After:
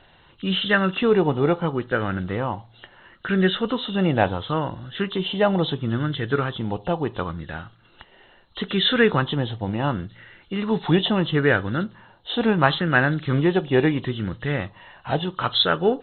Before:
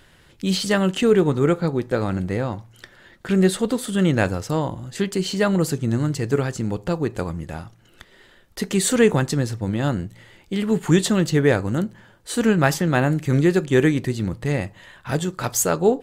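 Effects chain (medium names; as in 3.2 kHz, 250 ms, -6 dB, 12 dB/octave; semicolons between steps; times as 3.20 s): knee-point frequency compression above 2.7 kHz 4:1; sweeping bell 0.73 Hz 750–1600 Hz +11 dB; trim -3 dB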